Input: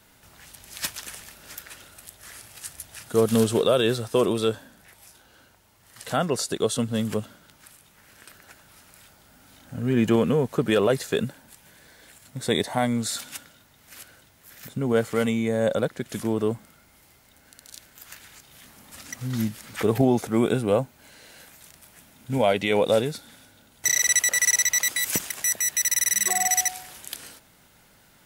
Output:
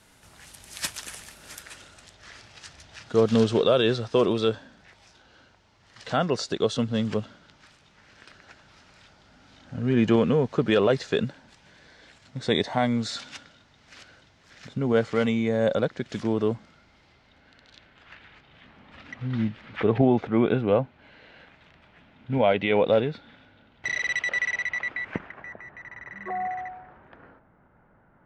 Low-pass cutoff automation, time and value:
low-pass 24 dB/octave
1.55 s 11 kHz
2.21 s 5.6 kHz
16.52 s 5.6 kHz
18.12 s 3.2 kHz
24.31 s 3.2 kHz
25.63 s 1.5 kHz

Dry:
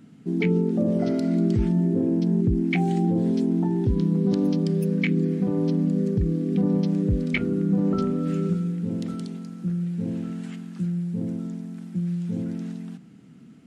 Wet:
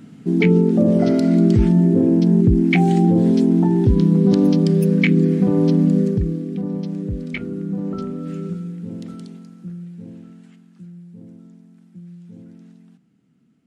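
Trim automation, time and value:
5.96 s +7.5 dB
6.55 s -3 dB
9.30 s -3 dB
10.61 s -12.5 dB

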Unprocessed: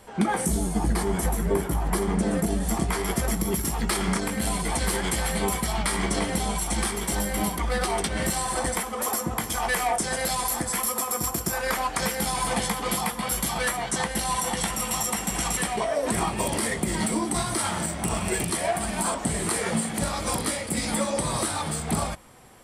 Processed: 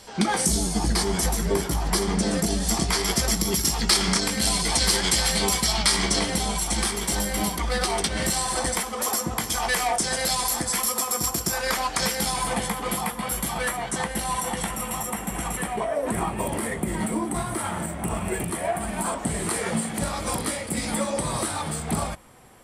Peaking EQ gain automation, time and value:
peaking EQ 5 kHz 1.3 oct
5.96 s +15 dB
6.44 s +7 dB
12.20 s +7 dB
12.60 s -4 dB
14.40 s -4 dB
15.16 s -12.5 dB
18.63 s -12.5 dB
19.45 s -2 dB

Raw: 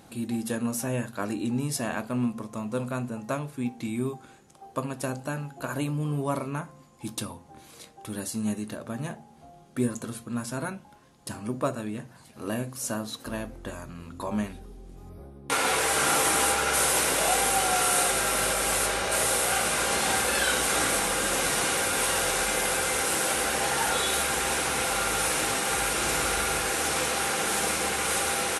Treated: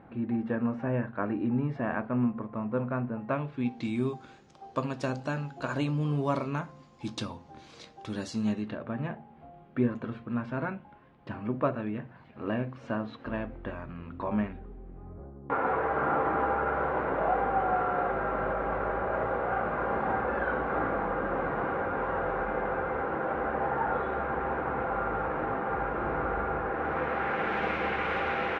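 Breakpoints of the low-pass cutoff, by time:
low-pass 24 dB/octave
3.15 s 2 kHz
3.88 s 5.5 kHz
8.38 s 5.5 kHz
8.84 s 2.6 kHz
14.28 s 2.6 kHz
15.47 s 1.4 kHz
26.67 s 1.4 kHz
27.64 s 2.4 kHz

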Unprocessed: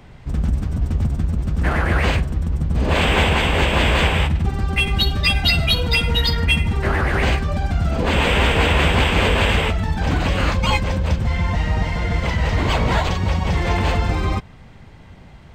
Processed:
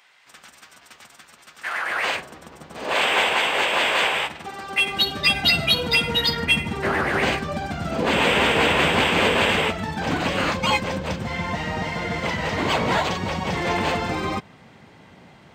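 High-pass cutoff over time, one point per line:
1.63 s 1.5 kHz
2.18 s 560 Hz
4.61 s 560 Hz
5.37 s 190 Hz

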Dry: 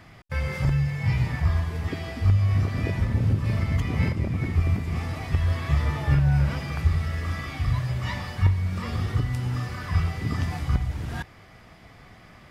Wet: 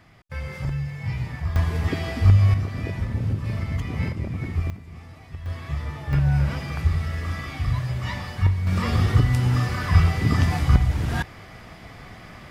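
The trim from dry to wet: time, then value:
-4.5 dB
from 1.56 s +5 dB
from 2.54 s -2.5 dB
from 4.70 s -13 dB
from 5.46 s -6 dB
from 6.13 s +0.5 dB
from 8.67 s +7 dB

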